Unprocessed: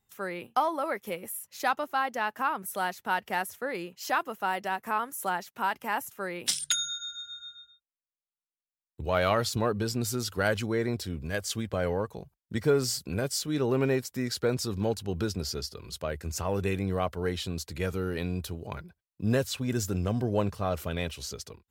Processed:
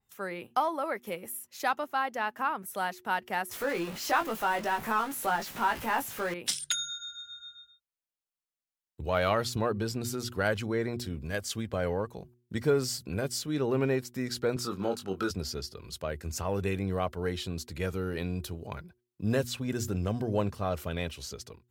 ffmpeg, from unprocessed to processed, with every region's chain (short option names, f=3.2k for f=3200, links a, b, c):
-filter_complex "[0:a]asettb=1/sr,asplit=3[a][b][c];[a]atrim=end=3.514[d];[b]atrim=start=3.51:end=6.34,asetpts=PTS-STARTPTS,afade=t=in:d=0.004:c=qsin,afade=t=out:st=2.826:d=0.004:c=qsin,aeval=exprs='val(0)+0.5*0.02*sgn(val(0))':c=same,asplit=2[e][f];[f]adelay=18,volume=-5dB[g];[e][g]amix=inputs=2:normalize=0,atrim=end_sample=124803[h];[c]atrim=start=6.336[i];[d][h]acrossfade=d=0.004:c1=hsin:c2=qsin[j];[j][i]acrossfade=d=0.004:c1=qsin:c2=hsin,asettb=1/sr,asplit=3[k][l][m];[k]atrim=end=14.564[n];[l]atrim=start=14.56:end=15.31,asetpts=PTS-STARTPTS,afade=t=in:d=0.004:c=qsin,afade=t=out:st=0.746:d=0.004:c=qsin,highpass=200,equalizer=f=1.3k:t=o:w=0.28:g=13.5,asplit=2[o][p];[p]adelay=21,volume=-5.5dB[q];[o][q]amix=inputs=2:normalize=0,atrim=end_sample=33075[r];[m]atrim=start=15.306[s];[n][r]acrossfade=d=0.004:c1=hsin:c2=qsin[t];[t][s]acrossfade=d=0.004:c1=qsin:c2=hsin,bandreject=f=120.8:t=h:w=4,bandreject=f=241.6:t=h:w=4,bandreject=f=362.4:t=h:w=4,adynamicequalizer=threshold=0.00631:dfrequency=3800:dqfactor=0.7:tfrequency=3800:tqfactor=0.7:attack=5:release=100:ratio=0.375:range=2:mode=cutabove:tftype=highshelf,volume=-1.5dB"